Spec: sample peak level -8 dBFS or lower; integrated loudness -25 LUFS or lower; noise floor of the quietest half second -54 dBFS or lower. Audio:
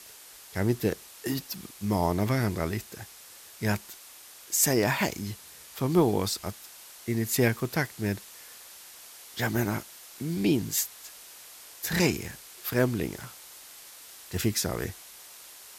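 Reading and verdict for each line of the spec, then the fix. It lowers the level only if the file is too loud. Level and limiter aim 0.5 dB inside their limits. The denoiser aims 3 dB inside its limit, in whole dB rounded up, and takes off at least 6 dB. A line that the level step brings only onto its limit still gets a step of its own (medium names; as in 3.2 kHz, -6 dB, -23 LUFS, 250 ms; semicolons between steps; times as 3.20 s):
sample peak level -9.5 dBFS: pass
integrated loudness -29.0 LUFS: pass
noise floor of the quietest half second -49 dBFS: fail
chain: noise reduction 8 dB, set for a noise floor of -49 dBFS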